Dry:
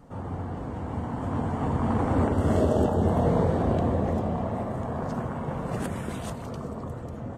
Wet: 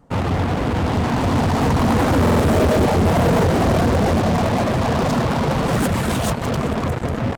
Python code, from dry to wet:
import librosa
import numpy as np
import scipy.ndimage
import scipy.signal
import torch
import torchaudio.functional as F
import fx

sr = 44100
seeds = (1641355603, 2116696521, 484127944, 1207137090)

p1 = fx.dereverb_blind(x, sr, rt60_s=0.57)
p2 = fx.fuzz(p1, sr, gain_db=40.0, gate_db=-41.0)
p3 = p1 + (p2 * 10.0 ** (-3.0 / 20.0))
p4 = fx.buffer_glitch(p3, sr, at_s=(2.21,), block=2048, repeats=3)
y = p4 * 10.0 ** (-1.0 / 20.0)